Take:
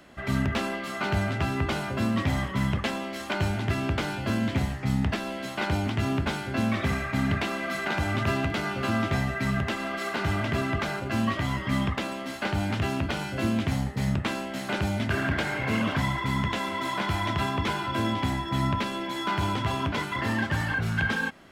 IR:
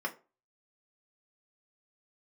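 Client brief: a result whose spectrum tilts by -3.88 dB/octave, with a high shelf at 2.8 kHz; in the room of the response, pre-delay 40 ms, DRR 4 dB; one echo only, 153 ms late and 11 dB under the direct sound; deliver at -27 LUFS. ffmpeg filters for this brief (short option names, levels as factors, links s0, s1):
-filter_complex "[0:a]highshelf=f=2800:g=6.5,aecho=1:1:153:0.282,asplit=2[s0][s1];[1:a]atrim=start_sample=2205,adelay=40[s2];[s1][s2]afir=irnorm=-1:irlink=0,volume=0.355[s3];[s0][s3]amix=inputs=2:normalize=0,volume=0.841"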